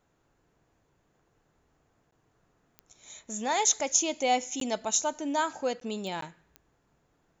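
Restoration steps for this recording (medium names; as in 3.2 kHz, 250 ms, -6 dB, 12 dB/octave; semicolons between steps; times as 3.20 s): de-click; interpolate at 2.11/4.60/5.80/6.21 s, 13 ms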